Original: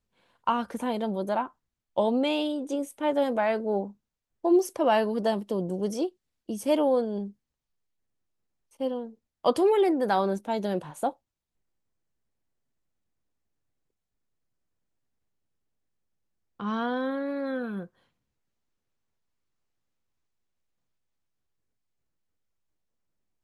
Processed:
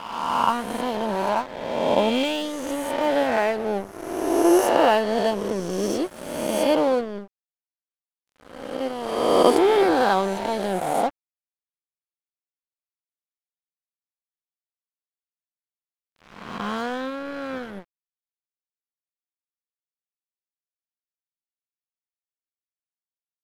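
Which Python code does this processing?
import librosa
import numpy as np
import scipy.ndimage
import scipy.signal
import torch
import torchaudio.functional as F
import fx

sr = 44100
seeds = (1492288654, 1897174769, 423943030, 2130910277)

y = fx.spec_swells(x, sr, rise_s=2.04)
y = np.sign(y) * np.maximum(np.abs(y) - 10.0 ** (-34.5 / 20.0), 0.0)
y = F.gain(torch.from_numpy(y), 3.0).numpy()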